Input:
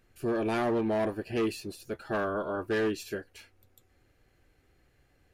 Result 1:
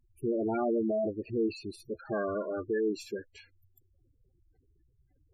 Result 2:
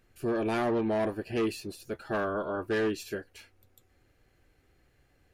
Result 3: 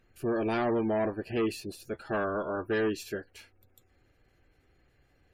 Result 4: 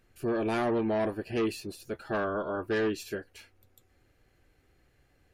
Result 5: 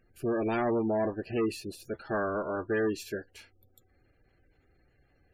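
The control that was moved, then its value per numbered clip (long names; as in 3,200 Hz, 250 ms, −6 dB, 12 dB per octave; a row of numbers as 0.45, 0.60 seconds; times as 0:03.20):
gate on every frequency bin, under each frame's peak: −10, −60, −35, −50, −25 decibels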